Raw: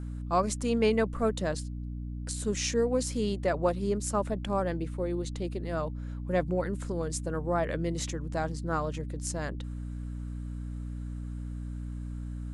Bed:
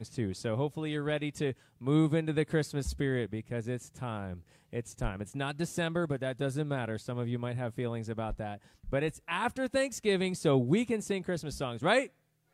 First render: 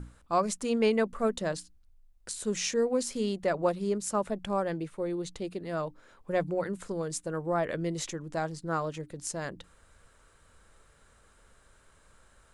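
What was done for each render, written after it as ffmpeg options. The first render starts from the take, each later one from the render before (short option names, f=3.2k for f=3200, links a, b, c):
-af "bandreject=f=60:t=h:w=6,bandreject=f=120:t=h:w=6,bandreject=f=180:t=h:w=6,bandreject=f=240:t=h:w=6,bandreject=f=300:t=h:w=6"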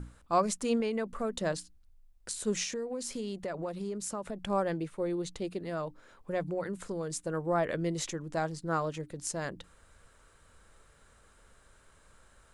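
-filter_complex "[0:a]asettb=1/sr,asplit=3[a][b][c];[a]atrim=end=0.804[d];[b]atrim=start=0.8:end=1.4,asetpts=PTS-STARTPTS,afade=t=in:d=0.004:c=qsin,afade=t=out:st=0.596:d=0.004:c=qsin,acompressor=threshold=-29dB:ratio=4:attack=3.2:release=140:knee=1:detection=peak[e];[c]atrim=start=1.396[f];[d][e]acrossfade=d=0.004:c1=hsin:c2=qsin[g];[g][f]acrossfade=d=0.004:c1=qsin:c2=hsin,asettb=1/sr,asplit=3[h][i][j];[h]atrim=end=2.634[k];[i]atrim=start=2.63:end=4.41,asetpts=PTS-STARTPTS,afade=t=in:d=0.004:c=qsin,afade=t=out:st=1.776:d=0.004:c=qsin,acompressor=threshold=-33dB:ratio=5:attack=3.2:release=140:knee=1:detection=peak[l];[j]atrim=start=4.406[m];[k][l]acrossfade=d=0.004:c1=hsin:c2=qsin[n];[n][m]acrossfade=d=0.004:c1=qsin:c2=hsin,asettb=1/sr,asplit=3[o][p][q];[o]atrim=end=5.694[r];[p]atrim=start=5.69:end=7.19,asetpts=PTS-STARTPTS,afade=t=in:d=0.004:c=qsin,afade=t=out:st=1.496:d=0.004:c=qsin,acompressor=threshold=-35dB:ratio=1.5:attack=3.2:release=140:knee=1:detection=peak[s];[q]atrim=start=7.186[t];[r][s]acrossfade=d=0.004:c1=hsin:c2=qsin[u];[u][t]acrossfade=d=0.004:c1=qsin:c2=hsin"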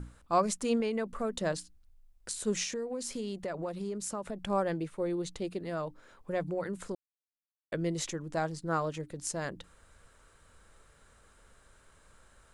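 -filter_complex "[0:a]asplit=3[a][b][c];[a]atrim=end=6.95,asetpts=PTS-STARTPTS,afade=t=out:st=6.946:d=0.004:c=hsin[d];[b]atrim=start=6.95:end=7.72,asetpts=PTS-STARTPTS,volume=0[e];[c]atrim=start=7.72,asetpts=PTS-STARTPTS,afade=t=in:d=0.004:c=hsin[f];[d][e][f]concat=n=3:v=0:a=1"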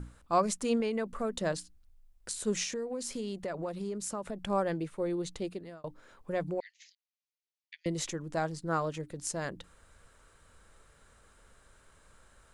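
-filter_complex "[0:a]asettb=1/sr,asplit=3[a][b][c];[a]atrim=end=6.604[d];[b]atrim=start=6.6:end=7.86,asetpts=PTS-STARTPTS,afade=t=in:d=0.004:c=qsin,afade=t=out:st=1.256:d=0.004:c=qsin,asuperpass=centerf=3600:order=20:qfactor=0.75[e];[c]atrim=start=7.856[f];[d][e]acrossfade=d=0.004:c1=hsin:c2=qsin[g];[g][f]acrossfade=d=0.004:c1=qsin:c2=hsin,asplit=2[h][i];[h]atrim=end=5.84,asetpts=PTS-STARTPTS,afade=t=out:st=5.44:d=0.4[j];[i]atrim=start=5.84,asetpts=PTS-STARTPTS,afade=t=in:d=0.004:c=hsin[k];[j][k]concat=n=2:v=0:a=1"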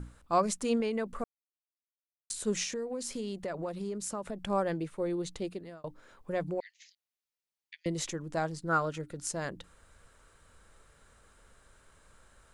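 -filter_complex "[0:a]asettb=1/sr,asplit=3[a][b][c];[a]atrim=end=8.694[d];[b]atrim=start=8.69:end=9.29,asetpts=PTS-STARTPTS,afade=t=in:d=0.004:c=qsin,afade=t=out:st=0.596:d=0.004:c=qsin,equalizer=f=1.4k:w=7.8:g=10.5[e];[c]atrim=start=9.286[f];[d][e]acrossfade=d=0.004:c1=hsin:c2=qsin[g];[g][f]acrossfade=d=0.004:c1=qsin:c2=hsin,asplit=3[h][i][j];[h]atrim=end=1.24,asetpts=PTS-STARTPTS,afade=t=out:st=1.236:d=0.004:c=hsin[k];[i]atrim=start=1.24:end=2.3,asetpts=PTS-STARTPTS,volume=0[l];[j]atrim=start=2.3,asetpts=PTS-STARTPTS,afade=t=in:d=0.004:c=hsin[m];[k][l][m]concat=n=3:v=0:a=1"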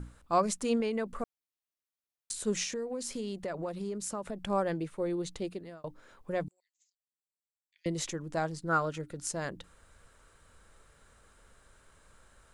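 -filter_complex "[0:a]asettb=1/sr,asplit=3[a][b][c];[a]atrim=end=6.484[d];[b]atrim=start=6.48:end=7.76,asetpts=PTS-STARTPTS,afade=t=in:d=0.004:c=qsin,afade=t=out:st=1.276:d=0.004:c=qsin,bandpass=f=7.7k:t=q:w=10[e];[c]atrim=start=7.756[f];[d][e]acrossfade=d=0.004:c1=hsin:c2=qsin[g];[g][f]acrossfade=d=0.004:c1=qsin:c2=hsin"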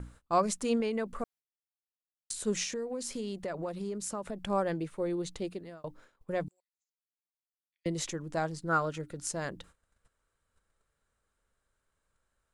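-af "agate=range=-19dB:threshold=-54dB:ratio=16:detection=peak"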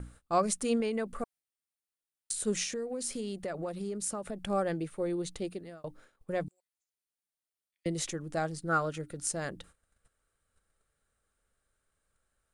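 -af "equalizer=f=9.2k:w=5.7:g=9,bandreject=f=980:w=7.1"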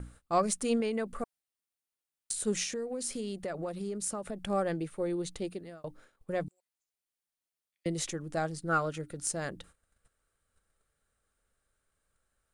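-af "aeval=exprs='0.224*(cos(1*acos(clip(val(0)/0.224,-1,1)))-cos(1*PI/2))+0.00447*(cos(4*acos(clip(val(0)/0.224,-1,1)))-cos(4*PI/2))':c=same"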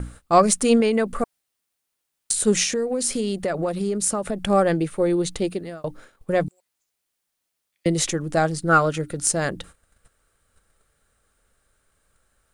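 -af "volume=12dB"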